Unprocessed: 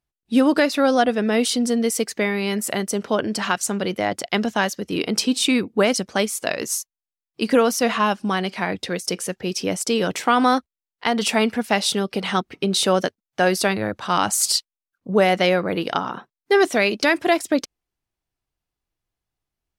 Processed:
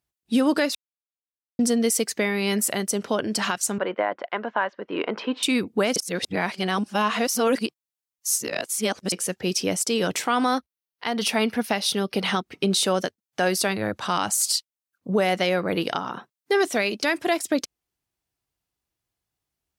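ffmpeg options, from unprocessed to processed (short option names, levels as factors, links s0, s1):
-filter_complex "[0:a]asettb=1/sr,asplit=3[s0][s1][s2];[s0]atrim=end=3.784[s3];[s1]atrim=start=3.78:end=5.43,asetpts=PTS-STARTPTS,afade=t=in:d=0.004:c=qsin,afade=t=out:st=1.646:d=0.004:c=qsin,highpass=360,equalizer=f=570:t=q:w=4:g=4,equalizer=f=1000:t=q:w=4:g=9,equalizer=f=1500:t=q:w=4:g=5,equalizer=f=2400:t=q:w=4:g=-3,lowpass=f=2500:w=0.5412,lowpass=f=2500:w=1.3066[s4];[s2]atrim=start=5.426[s5];[s3][s4]acrossfade=d=0.004:c1=hsin:c2=qsin[s6];[s6][s5]acrossfade=d=0.004:c1=qsin:c2=hsin,asettb=1/sr,asplit=3[s7][s8][s9];[s7]atrim=end=10.504[s10];[s8]atrim=start=10.5:end=12.41,asetpts=PTS-STARTPTS,afade=t=in:d=0.004:c=qsin,afade=t=out:st=1.906:d=0.004:c=qsin,equalizer=f=7600:w=5.3:g=-14[s11];[s9]atrim=start=12.406[s12];[s10][s11]acrossfade=d=0.004:c1=hsin:c2=qsin[s13];[s13][s12]acrossfade=d=0.004:c1=qsin:c2=hsin,asplit=5[s14][s15][s16][s17][s18];[s14]atrim=end=0.75,asetpts=PTS-STARTPTS,afade=t=out:st=0.746:d=0.004:c=hsin[s19];[s15]atrim=start=0.75:end=1.59,asetpts=PTS-STARTPTS,volume=0[s20];[s16]atrim=start=1.59:end=5.962,asetpts=PTS-STARTPTS,afade=t=in:d=0.004:c=hsin[s21];[s17]atrim=start=5.958:end=9.122,asetpts=PTS-STARTPTS,areverse[s22];[s18]atrim=start=9.118[s23];[s19][s20][s21]concat=n=3:v=0:a=1[s24];[s24][s22]acrossfade=d=0.004:c1=hsin:c2=hsin[s25];[s25][s23]acrossfade=d=0.004:c1=hsin:c2=hsin,highpass=53,highshelf=f=4500:g=5.5,alimiter=limit=0.251:level=0:latency=1:release=355"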